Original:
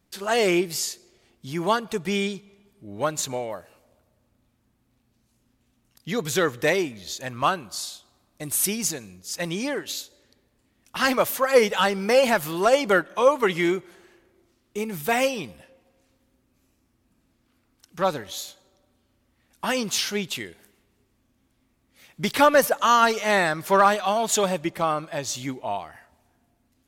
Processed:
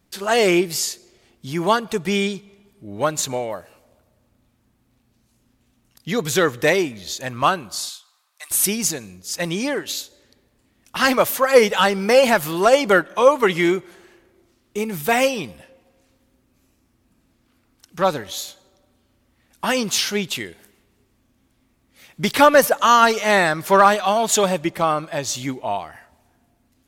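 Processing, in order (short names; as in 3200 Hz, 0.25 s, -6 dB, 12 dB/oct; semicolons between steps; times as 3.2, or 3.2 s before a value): 7.89–8.51 HPF 1000 Hz 24 dB/oct; gain +4.5 dB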